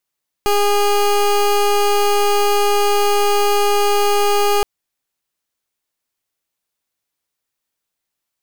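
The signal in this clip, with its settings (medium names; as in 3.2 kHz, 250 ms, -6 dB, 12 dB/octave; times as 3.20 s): pulse 409 Hz, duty 22% -14.5 dBFS 4.17 s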